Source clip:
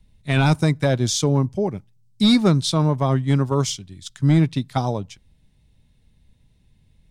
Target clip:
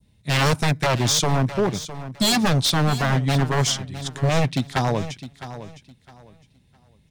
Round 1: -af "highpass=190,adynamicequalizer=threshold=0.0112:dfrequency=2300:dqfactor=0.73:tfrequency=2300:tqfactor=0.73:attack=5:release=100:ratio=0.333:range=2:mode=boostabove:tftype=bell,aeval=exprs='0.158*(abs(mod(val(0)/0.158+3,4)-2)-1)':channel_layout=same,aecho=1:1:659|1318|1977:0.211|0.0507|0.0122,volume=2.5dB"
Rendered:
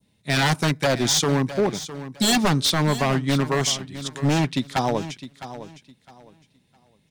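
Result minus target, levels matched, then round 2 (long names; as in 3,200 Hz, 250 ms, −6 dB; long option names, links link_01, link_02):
125 Hz band −2.5 dB
-af "highpass=79,adynamicequalizer=threshold=0.0112:dfrequency=2300:dqfactor=0.73:tfrequency=2300:tqfactor=0.73:attack=5:release=100:ratio=0.333:range=2:mode=boostabove:tftype=bell,aeval=exprs='0.158*(abs(mod(val(0)/0.158+3,4)-2)-1)':channel_layout=same,aecho=1:1:659|1318|1977:0.211|0.0507|0.0122,volume=2.5dB"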